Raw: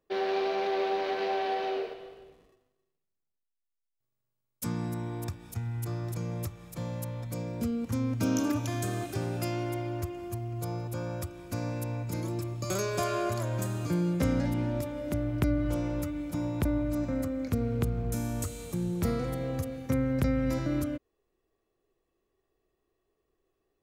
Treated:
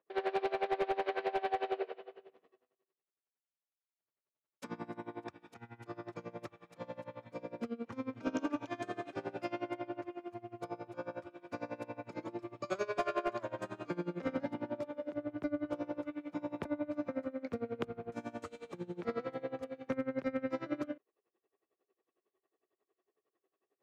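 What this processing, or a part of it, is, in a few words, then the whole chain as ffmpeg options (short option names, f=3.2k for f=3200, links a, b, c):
helicopter radio: -filter_complex "[0:a]asettb=1/sr,asplit=3[a][b][c];[a]atrim=end=14.404[d];[b]atrim=start=14.4:end=16.06,asetpts=PTS-STARTPTS,afade=t=in:d=0.004:c=qsin,afade=t=out:st=1.656:d=0.004:c=qsin,equalizer=f=2.3k:t=o:w=1.1:g=-4[e];[c]atrim=start=16.056[f];[d][e]acrossfade=d=0.004:c1=hsin:c2=qsin[g];[g][f]acrossfade=d=0.004:c1=qsin:c2=hsin,highpass=350,lowpass=2.6k,aeval=exprs='val(0)*pow(10,-22*(0.5-0.5*cos(2*PI*11*n/s))/20)':c=same,asoftclip=type=hard:threshold=-27.5dB,volume=2.5dB"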